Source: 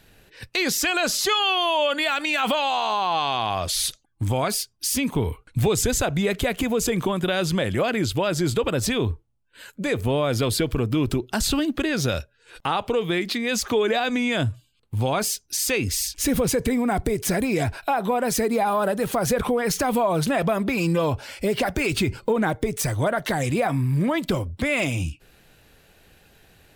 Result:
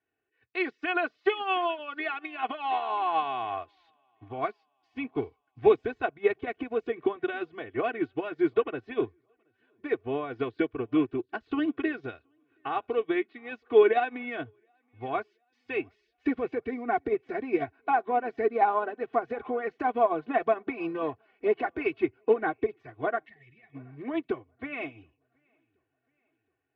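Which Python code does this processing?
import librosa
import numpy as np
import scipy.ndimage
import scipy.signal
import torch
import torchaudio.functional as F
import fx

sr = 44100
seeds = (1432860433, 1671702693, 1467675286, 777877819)

y = scipy.signal.sosfilt(scipy.signal.butter(2, 170.0, 'highpass', fs=sr, output='sos'), x)
y = fx.spec_box(y, sr, start_s=23.26, length_s=0.49, low_hz=220.0, high_hz=1700.0, gain_db=-21)
y = scipy.signal.sosfilt(scipy.signal.butter(4, 2500.0, 'lowpass', fs=sr, output='sos'), y)
y = y + 0.99 * np.pad(y, (int(2.7 * sr / 1000.0), 0))[:len(y)]
y = fx.echo_feedback(y, sr, ms=724, feedback_pct=52, wet_db=-20)
y = fx.upward_expand(y, sr, threshold_db=-33.0, expansion=2.5)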